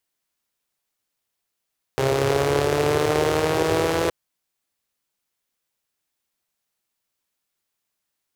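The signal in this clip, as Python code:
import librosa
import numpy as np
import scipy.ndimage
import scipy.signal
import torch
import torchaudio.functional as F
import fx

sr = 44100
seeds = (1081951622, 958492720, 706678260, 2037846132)

y = fx.engine_four_rev(sr, seeds[0], length_s=2.12, rpm=4000, resonances_hz=(110.0, 410.0), end_rpm=5000)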